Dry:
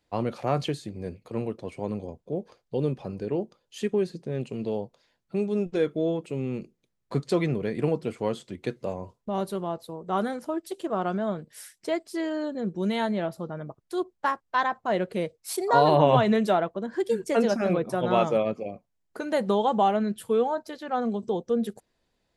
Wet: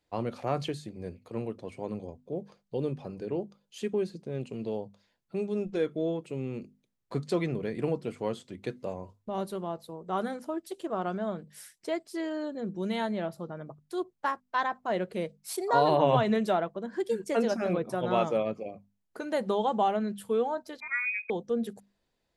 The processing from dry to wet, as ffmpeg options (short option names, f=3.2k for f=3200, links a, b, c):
-filter_complex "[0:a]asettb=1/sr,asplit=3[a][b][c];[a]atrim=end=3.284[d];[b]atrim=start=3.28:end=4.46,asetpts=PTS-STARTPTS,afade=t=in:d=0.004:c=qsin,afade=t=out:st=1.176:d=0.004:c=qsin,bandreject=f=1.8k:w=14[e];[c]atrim=start=4.456[f];[d][e]acrossfade=d=0.004:c1=hsin:c2=qsin[g];[g][f]acrossfade=d=0.004:c1=qsin:c2=hsin,asettb=1/sr,asplit=3[h][i][j];[h]atrim=end=20.804[k];[i]atrim=start=20.8:end=21.3,asetpts=PTS-STARTPTS,afade=t=in:d=0.004:c=qsin,afade=t=out:st=0.496:d=0.004:c=qsin,lowpass=f=2.3k:t=q:w=0.5098,lowpass=f=2.3k:t=q:w=0.6013,lowpass=f=2.3k:t=q:w=0.9,lowpass=f=2.3k:t=q:w=2.563,afreqshift=-2700[l];[j]atrim=start=21.296[m];[k][l]acrossfade=d=0.004:c1=hsin:c2=qsin[n];[n][m]acrossfade=d=0.004:c1=qsin:c2=hsin,bandreject=f=50:t=h:w=6,bandreject=f=100:t=h:w=6,bandreject=f=150:t=h:w=6,bandreject=f=200:t=h:w=6,bandreject=f=250:t=h:w=6,volume=-4dB"